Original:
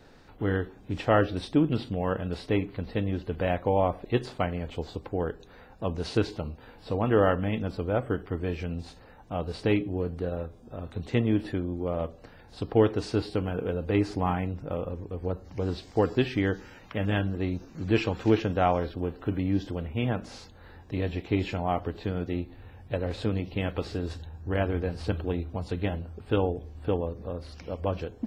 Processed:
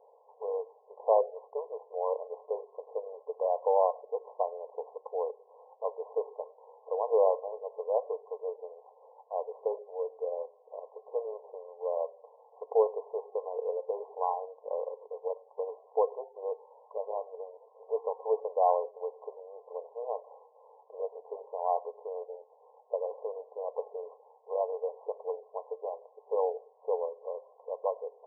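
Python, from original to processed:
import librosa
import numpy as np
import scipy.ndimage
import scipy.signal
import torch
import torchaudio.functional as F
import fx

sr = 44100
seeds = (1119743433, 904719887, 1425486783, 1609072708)

y = fx.brickwall_bandpass(x, sr, low_hz=420.0, high_hz=1100.0)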